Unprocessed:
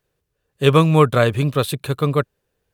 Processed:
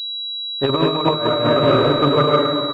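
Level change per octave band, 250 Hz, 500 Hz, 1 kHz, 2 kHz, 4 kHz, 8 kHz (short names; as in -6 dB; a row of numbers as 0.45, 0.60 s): +1.5 dB, +2.5 dB, +3.5 dB, -1.0 dB, +10.0 dB, under -15 dB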